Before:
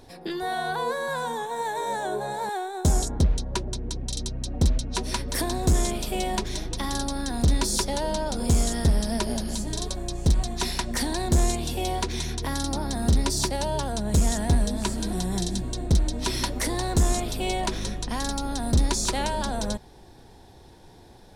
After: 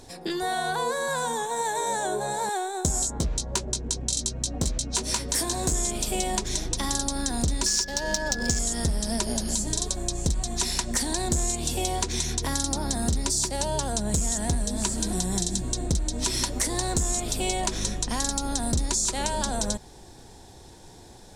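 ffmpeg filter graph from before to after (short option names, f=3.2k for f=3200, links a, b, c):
-filter_complex "[0:a]asettb=1/sr,asplit=3[a][b][c];[a]atrim=end=2.924[d];[b]atrim=start=2.92:end=5.73,asetpts=PTS-STARTPTS,afade=t=in:d=0.004:c=qsin,afade=t=out:st=2.806:d=0.004:c=qsin,lowshelf=f=93:g=-7,asoftclip=type=hard:threshold=-18.5dB,asplit=2[e][f];[f]adelay=18,volume=-5dB[g];[e][g]amix=inputs=2:normalize=0,atrim=end_sample=123921[h];[c]atrim=start=5.726[i];[d][h]acrossfade=d=0.004:c1=hsin:c2=qsin[j];[j][i]acrossfade=d=0.004:c1=qsin:c2=hsin,asettb=1/sr,asplit=3[k][l][m];[k]atrim=end=7.664[n];[l]atrim=start=7.66:end=8.59,asetpts=PTS-STARTPTS,afade=t=in:d=0.004:c=qsin,afade=t=out:st=0.926:d=0.004:c=qsin,equalizer=f=5.5k:t=o:w=0.69:g=12,adynamicsmooth=sensitivity=5:basefreq=1.6k,aeval=exprs='val(0)+0.0316*sin(2*PI*1700*n/s)':c=same[o];[m]atrim=start=8.586[p];[n][o]acrossfade=d=0.004:c1=hsin:c2=qsin[q];[q][p]acrossfade=d=0.004:c1=qsin:c2=hsin,equalizer=f=7.4k:t=o:w=0.86:g=12,acompressor=threshold=-24dB:ratio=6,volume=1.5dB"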